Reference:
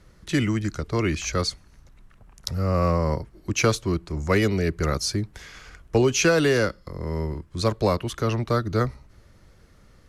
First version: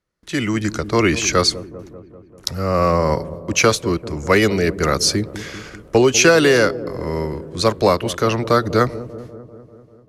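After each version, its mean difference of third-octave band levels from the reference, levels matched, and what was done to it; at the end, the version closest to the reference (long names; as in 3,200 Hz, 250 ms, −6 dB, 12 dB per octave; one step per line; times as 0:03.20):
4.0 dB: noise gate with hold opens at −40 dBFS
low-shelf EQ 160 Hz −12 dB
automatic gain control gain up to 12 dB
on a send: delay with a low-pass on its return 196 ms, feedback 65%, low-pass 560 Hz, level −12.5 dB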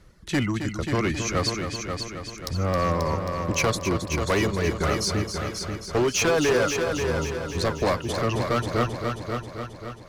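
9.5 dB: reverb reduction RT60 0.92 s
dynamic equaliser 910 Hz, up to +5 dB, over −35 dBFS, Q 0.78
hard clipping −18.5 dBFS, distortion −9 dB
echo machine with several playback heads 268 ms, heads first and second, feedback 56%, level −8.5 dB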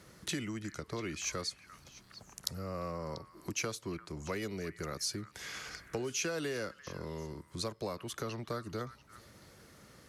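6.5 dB: downward compressor 4 to 1, threshold −38 dBFS, peak gain reduction 19 dB
Bessel high-pass filter 150 Hz, order 2
high-shelf EQ 7,100 Hz +8 dB
on a send: echo through a band-pass that steps 345 ms, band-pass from 1,500 Hz, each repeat 1.4 octaves, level −11 dB
on the sum: level +1 dB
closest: first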